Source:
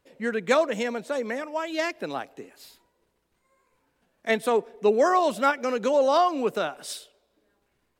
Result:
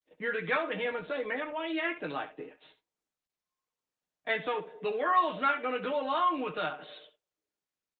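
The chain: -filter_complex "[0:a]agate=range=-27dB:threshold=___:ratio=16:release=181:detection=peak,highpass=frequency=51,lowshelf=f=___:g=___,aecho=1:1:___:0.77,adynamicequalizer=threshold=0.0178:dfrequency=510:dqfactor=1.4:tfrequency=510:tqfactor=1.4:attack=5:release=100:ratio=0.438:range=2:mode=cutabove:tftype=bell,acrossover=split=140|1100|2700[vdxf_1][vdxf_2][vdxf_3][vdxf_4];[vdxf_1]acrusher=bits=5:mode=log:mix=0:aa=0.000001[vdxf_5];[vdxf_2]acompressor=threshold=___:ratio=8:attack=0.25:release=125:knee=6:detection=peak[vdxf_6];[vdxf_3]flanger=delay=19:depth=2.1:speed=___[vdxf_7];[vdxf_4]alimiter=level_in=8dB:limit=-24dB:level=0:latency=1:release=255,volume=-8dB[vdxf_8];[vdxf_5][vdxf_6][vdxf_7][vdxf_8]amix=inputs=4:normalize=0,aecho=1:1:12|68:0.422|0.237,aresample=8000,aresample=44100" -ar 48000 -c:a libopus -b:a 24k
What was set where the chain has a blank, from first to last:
-51dB, 200, -8.5, 6.5, -31dB, 0.67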